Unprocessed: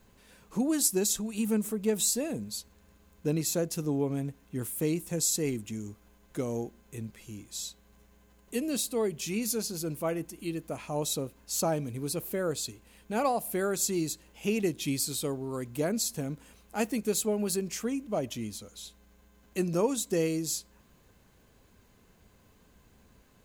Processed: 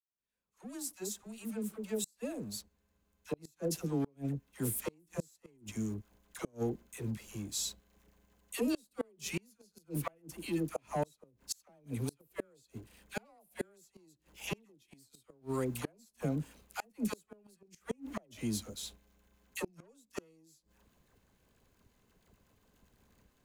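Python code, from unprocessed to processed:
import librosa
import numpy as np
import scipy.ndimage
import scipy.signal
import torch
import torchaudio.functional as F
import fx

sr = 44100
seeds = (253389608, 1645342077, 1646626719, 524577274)

y = fx.fade_in_head(x, sr, length_s=5.9)
y = fx.leveller(y, sr, passes=2)
y = fx.dispersion(y, sr, late='lows', ms=75.0, hz=710.0)
y = fx.gate_flip(y, sr, shuts_db=-17.0, range_db=-34)
y = y * 10.0 ** (-6.0 / 20.0)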